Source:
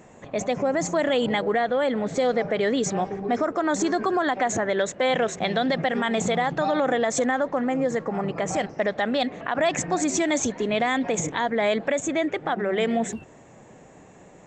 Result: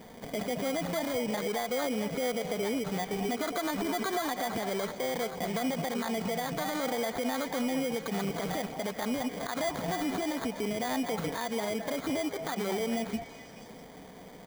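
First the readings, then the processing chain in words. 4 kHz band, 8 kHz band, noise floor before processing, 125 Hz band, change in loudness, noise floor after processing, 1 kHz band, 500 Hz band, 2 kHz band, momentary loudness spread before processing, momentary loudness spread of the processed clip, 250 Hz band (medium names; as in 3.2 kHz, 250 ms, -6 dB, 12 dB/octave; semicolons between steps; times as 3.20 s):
-5.5 dB, -9.5 dB, -49 dBFS, -5.5 dB, -8.0 dB, -48 dBFS, -8.5 dB, -9.0 dB, -9.0 dB, 4 LU, 3 LU, -6.5 dB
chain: treble shelf 4.1 kHz -11.5 dB; comb 4.3 ms, depth 46%; compression, threshold -26 dBFS, peak gain reduction 9.5 dB; peak limiter -24.5 dBFS, peak gain reduction 8.5 dB; sample-rate reducer 2.7 kHz, jitter 0%; repeats whose band climbs or falls 216 ms, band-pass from 780 Hz, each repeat 1.4 oct, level -6 dB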